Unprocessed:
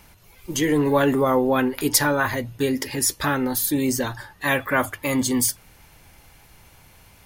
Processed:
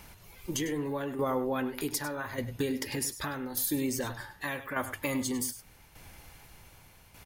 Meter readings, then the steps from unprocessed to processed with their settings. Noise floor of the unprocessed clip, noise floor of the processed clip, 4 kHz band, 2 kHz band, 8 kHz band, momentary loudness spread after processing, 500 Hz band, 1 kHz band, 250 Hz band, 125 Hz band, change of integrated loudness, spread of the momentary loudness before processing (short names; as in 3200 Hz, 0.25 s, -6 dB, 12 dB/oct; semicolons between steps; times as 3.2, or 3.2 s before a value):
-52 dBFS, -57 dBFS, -11.0 dB, -12.0 dB, -11.0 dB, 16 LU, -11.5 dB, -12.0 dB, -11.0 dB, -10.5 dB, -11.0 dB, 6 LU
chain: compressor 4:1, threshold -28 dBFS, peak gain reduction 12.5 dB; tremolo saw down 0.84 Hz, depth 60%; echo 0.1 s -13 dB